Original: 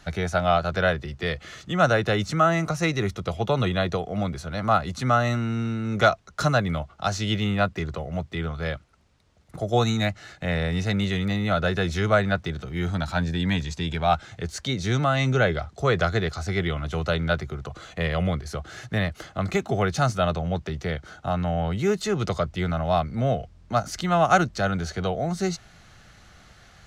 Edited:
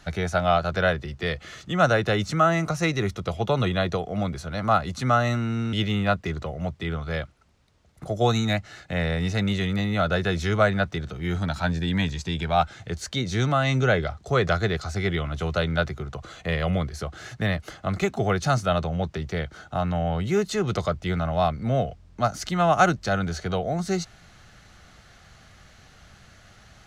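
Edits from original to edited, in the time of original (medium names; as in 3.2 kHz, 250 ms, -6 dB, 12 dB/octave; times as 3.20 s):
5.73–7.25 s: delete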